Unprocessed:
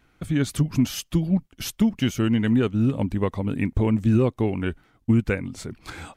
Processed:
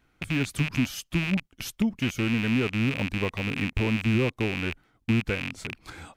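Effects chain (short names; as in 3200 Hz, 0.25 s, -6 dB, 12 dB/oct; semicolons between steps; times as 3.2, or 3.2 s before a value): rattling part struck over -33 dBFS, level -14 dBFS; gain -5 dB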